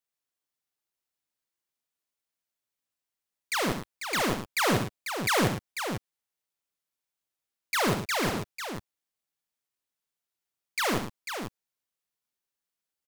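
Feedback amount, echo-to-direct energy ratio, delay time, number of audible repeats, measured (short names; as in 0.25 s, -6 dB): no steady repeat, -4.0 dB, 67 ms, 3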